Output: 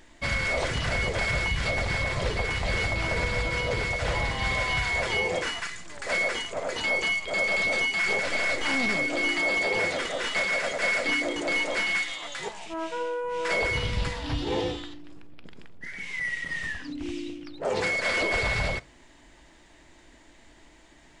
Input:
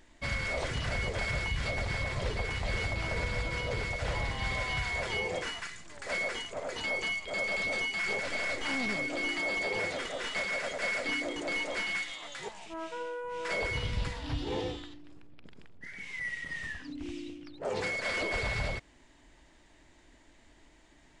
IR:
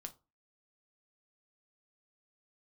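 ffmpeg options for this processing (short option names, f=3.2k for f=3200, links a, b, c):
-filter_complex "[0:a]asplit=2[a][b];[1:a]atrim=start_sample=2205,lowshelf=f=150:g=-10.5[c];[b][c]afir=irnorm=-1:irlink=0,volume=1dB[d];[a][d]amix=inputs=2:normalize=0,volume=2.5dB"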